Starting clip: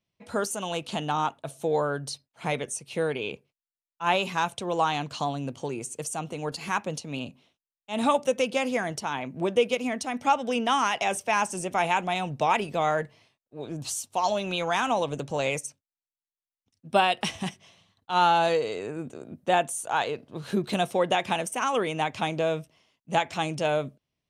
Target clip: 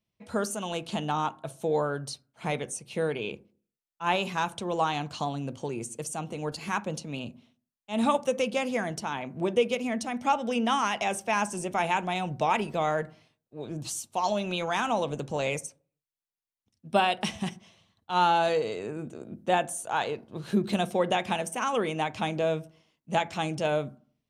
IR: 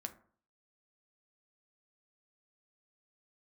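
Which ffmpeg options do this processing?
-filter_complex "[0:a]asplit=2[a][b];[1:a]atrim=start_sample=2205,lowshelf=f=390:g=9.5[c];[b][c]afir=irnorm=-1:irlink=0,volume=-4.5dB[d];[a][d]amix=inputs=2:normalize=0,volume=-5.5dB"

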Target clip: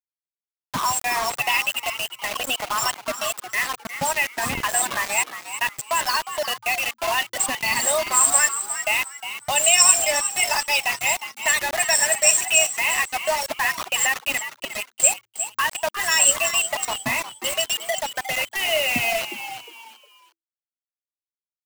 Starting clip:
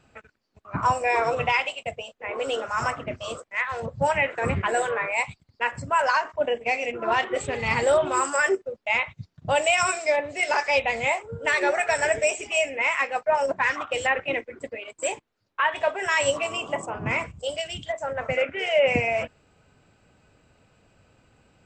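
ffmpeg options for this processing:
-filter_complex "[0:a]aemphasis=mode=production:type=riaa,afftfilt=real='re*gte(hypot(re,im),0.0562)':imag='im*gte(hypot(re,im),0.0562)':win_size=1024:overlap=0.75,aecho=1:1:1.1:0.83,acrossover=split=160|3000[a][b][c];[b]acompressor=threshold=-32dB:ratio=3[d];[a][d][c]amix=inputs=3:normalize=0,equalizer=f=250:t=o:w=0.33:g=12,equalizer=f=400:t=o:w=0.33:g=-4,equalizer=f=630:t=o:w=0.33:g=6,equalizer=f=1.25k:t=o:w=0.33:g=8,acrusher=bits=4:mix=0:aa=0.000001,asplit=4[e][f][g][h];[f]adelay=358,afreqshift=110,volume=-10.5dB[i];[g]adelay=716,afreqshift=220,volume=-20.7dB[j];[h]adelay=1074,afreqshift=330,volume=-30.8dB[k];[e][i][j][k]amix=inputs=4:normalize=0,volume=3dB"

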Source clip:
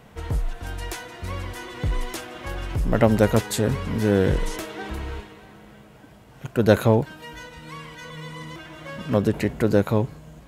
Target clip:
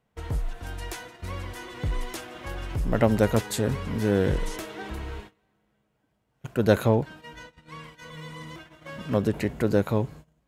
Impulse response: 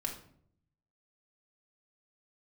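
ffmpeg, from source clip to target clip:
-filter_complex "[0:a]agate=range=-21dB:threshold=-39dB:ratio=16:detection=peak,asettb=1/sr,asplit=3[a][b][c];[a]atrim=end=6.894[d];[b]atrim=start=6.89:end=7.84,asetpts=PTS-STARTPTS,afade=t=in:d=0.004:c=qsin,afade=t=out:st=0.946:d=0.004:c=qsin,highshelf=f=9.5k:g=-9[e];[c]atrim=start=7.836[f];[d][e]acrossfade=d=0.004:c1=hsin:c2=qsin[g];[g][f]acrossfade=d=0.004:c1=qsin:c2=hsin,volume=-3.5dB"

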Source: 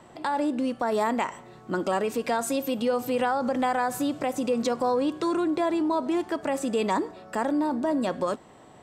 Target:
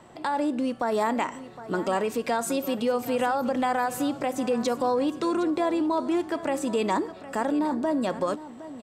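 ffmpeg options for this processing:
-af "aecho=1:1:763:0.178"

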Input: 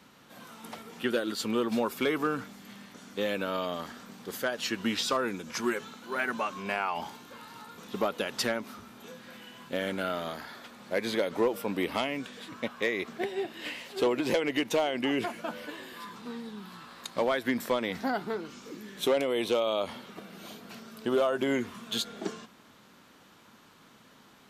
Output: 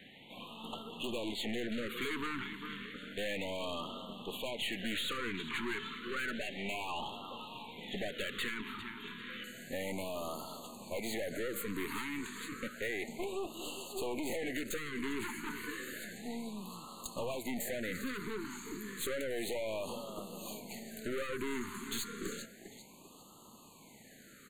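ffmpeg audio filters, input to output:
-af "asetnsamples=n=441:p=0,asendcmd='9.44 highshelf g 6',highshelf=f=4.3k:t=q:w=3:g=-9,aecho=1:1:397|794|1191:0.112|0.0438|0.0171,aeval=exprs='(tanh(63.1*val(0)+0.55)-tanh(0.55))/63.1':c=same,asuperstop=centerf=5400:order=12:qfactor=2.8,equalizer=f=2k:w=2.3:g=5.5,acompressor=threshold=-35dB:ratio=6,afftfilt=real='re*(1-between(b*sr/1024,600*pow(1900/600,0.5+0.5*sin(2*PI*0.31*pts/sr))/1.41,600*pow(1900/600,0.5+0.5*sin(2*PI*0.31*pts/sr))*1.41))':imag='im*(1-between(b*sr/1024,600*pow(1900/600,0.5+0.5*sin(2*PI*0.31*pts/sr))/1.41,600*pow(1900/600,0.5+0.5*sin(2*PI*0.31*pts/sr))*1.41))':win_size=1024:overlap=0.75,volume=2.5dB"

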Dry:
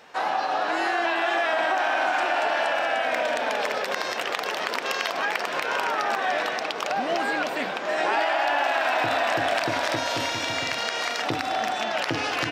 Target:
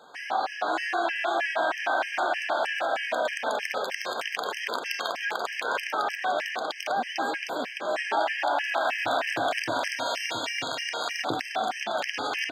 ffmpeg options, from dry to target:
-af "highpass=f=220:p=1,afftfilt=real='re*gt(sin(2*PI*3.2*pts/sr)*(1-2*mod(floor(b*sr/1024/1600),2)),0)':imag='im*gt(sin(2*PI*3.2*pts/sr)*(1-2*mod(floor(b*sr/1024/1600),2)),0)':win_size=1024:overlap=0.75"

